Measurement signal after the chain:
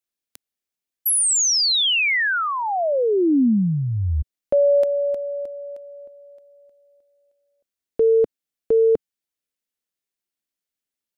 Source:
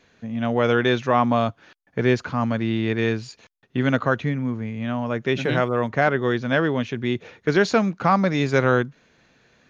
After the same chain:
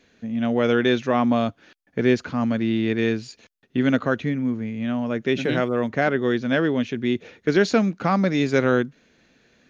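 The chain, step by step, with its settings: graphic EQ 125/250/1000 Hz -5/+4/-6 dB

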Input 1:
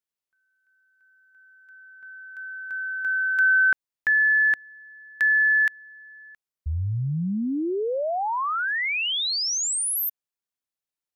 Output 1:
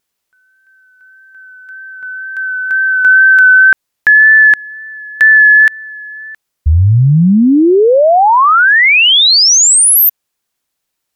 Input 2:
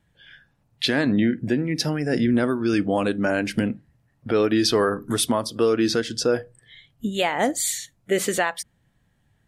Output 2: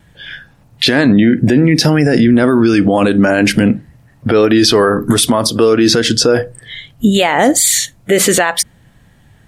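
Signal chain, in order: wow and flutter 20 cents; loudness maximiser +19.5 dB; trim -1 dB

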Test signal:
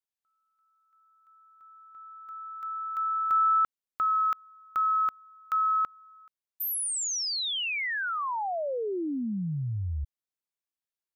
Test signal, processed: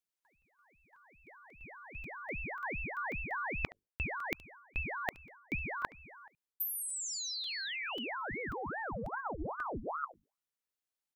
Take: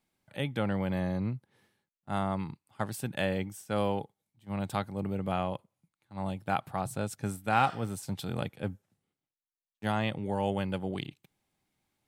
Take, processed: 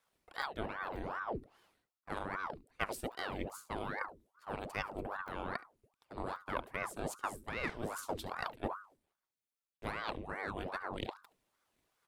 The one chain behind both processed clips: hum notches 50/100/150/200/250/300 Hz; reverse; compression 10:1, threshold -38 dBFS; reverse; transient shaper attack +7 dB, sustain -1 dB; on a send: delay 71 ms -20 dB; on the sum: crackling interface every 0.54 s, samples 128, zero, from 0.42 s; ring modulator with a swept carrier 740 Hz, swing 85%, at 2.5 Hz; trim +3 dB

